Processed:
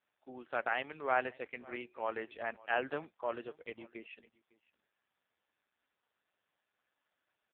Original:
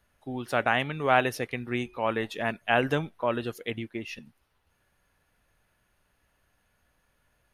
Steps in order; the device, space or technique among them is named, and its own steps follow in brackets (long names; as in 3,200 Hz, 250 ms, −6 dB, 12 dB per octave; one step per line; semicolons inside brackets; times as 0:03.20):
satellite phone (band-pass filter 370–3,100 Hz; single-tap delay 556 ms −22.5 dB; level −7.5 dB; AMR narrowband 5.15 kbit/s 8,000 Hz)